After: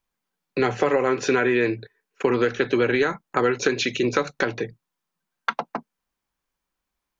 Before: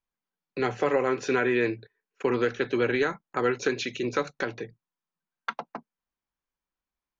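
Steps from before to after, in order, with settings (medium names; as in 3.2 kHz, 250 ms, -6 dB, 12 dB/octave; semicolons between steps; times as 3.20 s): compression 3:1, threshold -26 dBFS, peak gain reduction 6 dB; trim +8.5 dB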